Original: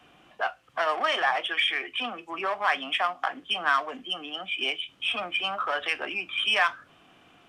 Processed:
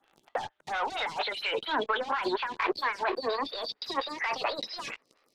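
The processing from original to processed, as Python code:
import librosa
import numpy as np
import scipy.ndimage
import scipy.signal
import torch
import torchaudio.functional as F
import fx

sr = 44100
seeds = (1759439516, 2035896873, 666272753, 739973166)

y = fx.speed_glide(x, sr, from_pct=110, to_pct=170)
y = fx.leveller(y, sr, passes=5)
y = fx.over_compress(y, sr, threshold_db=-21.0, ratio=-1.0)
y = fx.env_lowpass_down(y, sr, base_hz=2400.0, full_db=-15.5)
y = fx.stagger_phaser(y, sr, hz=4.3)
y = y * 10.0 ** (-6.0 / 20.0)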